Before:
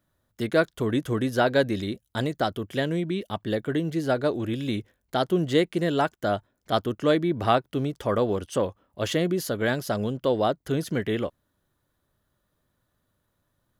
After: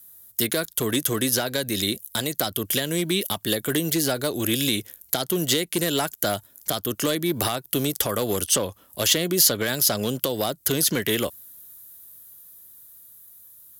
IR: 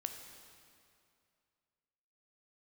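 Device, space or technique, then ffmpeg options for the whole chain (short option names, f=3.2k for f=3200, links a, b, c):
FM broadcast chain: -filter_complex "[0:a]highpass=47,dynaudnorm=f=390:g=13:m=4.5dB,acrossover=split=240|5700[a][b][c];[a]acompressor=threshold=-33dB:ratio=4[d];[b]acompressor=threshold=-25dB:ratio=4[e];[c]acompressor=threshold=-59dB:ratio=4[f];[d][e][f]amix=inputs=3:normalize=0,aemphasis=mode=production:type=75fm,alimiter=limit=-17dB:level=0:latency=1:release=215,asoftclip=type=hard:threshold=-20.5dB,lowpass=f=15k:w=0.5412,lowpass=f=15k:w=1.3066,aemphasis=mode=production:type=75fm,volume=4dB"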